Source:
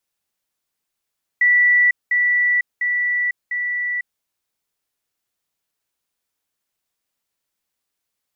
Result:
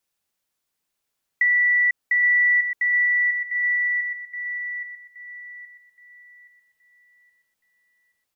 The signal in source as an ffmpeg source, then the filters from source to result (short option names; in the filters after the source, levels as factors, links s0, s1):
-f lavfi -i "aevalsrc='pow(10,(-11-3*floor(t/0.7))/20)*sin(2*PI*1960*t)*clip(min(mod(t,0.7),0.5-mod(t,0.7))/0.005,0,1)':d=2.8:s=44100"
-filter_complex "[0:a]acompressor=threshold=0.141:ratio=6,asplit=2[s0][s1];[s1]adelay=822,lowpass=f=1900:p=1,volume=0.631,asplit=2[s2][s3];[s3]adelay=822,lowpass=f=1900:p=1,volume=0.47,asplit=2[s4][s5];[s5]adelay=822,lowpass=f=1900:p=1,volume=0.47,asplit=2[s6][s7];[s7]adelay=822,lowpass=f=1900:p=1,volume=0.47,asplit=2[s8][s9];[s9]adelay=822,lowpass=f=1900:p=1,volume=0.47,asplit=2[s10][s11];[s11]adelay=822,lowpass=f=1900:p=1,volume=0.47[s12];[s2][s4][s6][s8][s10][s12]amix=inputs=6:normalize=0[s13];[s0][s13]amix=inputs=2:normalize=0"